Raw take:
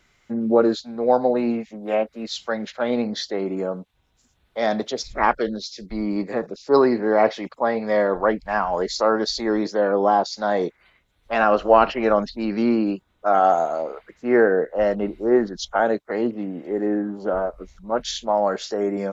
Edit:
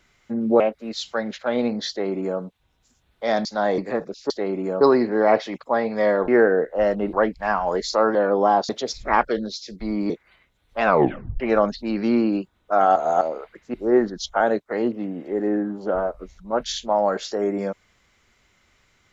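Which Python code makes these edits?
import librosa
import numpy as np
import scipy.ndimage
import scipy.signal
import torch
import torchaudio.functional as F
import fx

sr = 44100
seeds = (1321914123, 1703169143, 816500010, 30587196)

y = fx.edit(x, sr, fx.cut(start_s=0.6, length_s=1.34),
    fx.duplicate(start_s=3.23, length_s=0.51, to_s=6.72),
    fx.swap(start_s=4.79, length_s=1.41, other_s=10.31, other_length_s=0.33),
    fx.cut(start_s=9.21, length_s=0.56),
    fx.tape_stop(start_s=11.39, length_s=0.55),
    fx.reverse_span(start_s=13.5, length_s=0.25),
    fx.move(start_s=14.28, length_s=0.85, to_s=8.19), tone=tone)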